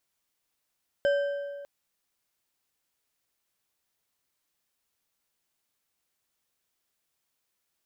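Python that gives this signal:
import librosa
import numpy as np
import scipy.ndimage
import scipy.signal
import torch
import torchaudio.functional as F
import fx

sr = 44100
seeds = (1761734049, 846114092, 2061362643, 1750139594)

y = fx.strike_metal(sr, length_s=0.6, level_db=-20.0, body='bar', hz=568.0, decay_s=1.81, tilt_db=9.5, modes=5)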